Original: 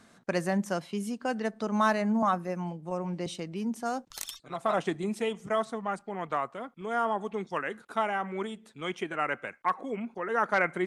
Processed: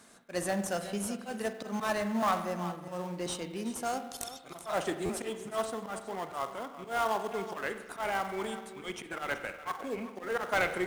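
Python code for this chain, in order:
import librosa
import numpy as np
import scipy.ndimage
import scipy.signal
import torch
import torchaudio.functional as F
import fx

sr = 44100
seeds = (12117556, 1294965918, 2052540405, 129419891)

p1 = fx.diode_clip(x, sr, knee_db=-20.5)
p2 = fx.highpass(p1, sr, hz=410.0, slope=6)
p3 = fx.peak_eq(p2, sr, hz=10000.0, db=9.5, octaves=1.2)
p4 = fx.auto_swell(p3, sr, attack_ms=110.0)
p5 = p4 + fx.echo_single(p4, sr, ms=376, db=-13.5, dry=0)
p6 = fx.rev_spring(p5, sr, rt60_s=1.1, pass_ms=(45,), chirp_ms=25, drr_db=8.5)
p7 = fx.sample_hold(p6, sr, seeds[0], rate_hz=2200.0, jitter_pct=20)
p8 = p6 + F.gain(torch.from_numpy(p7), -9.5).numpy()
y = fx.buffer_glitch(p8, sr, at_s=(5.05,), block=512, repeats=3)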